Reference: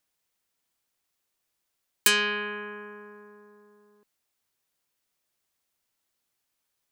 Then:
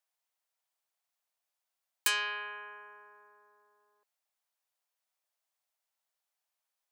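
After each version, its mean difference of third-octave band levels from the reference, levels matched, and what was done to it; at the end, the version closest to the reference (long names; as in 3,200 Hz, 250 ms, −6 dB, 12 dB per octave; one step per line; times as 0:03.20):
2.5 dB: four-pole ladder high-pass 560 Hz, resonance 40%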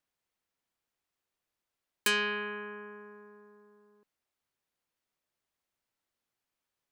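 1.0 dB: high-shelf EQ 4,000 Hz −9.5 dB
level −3 dB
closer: second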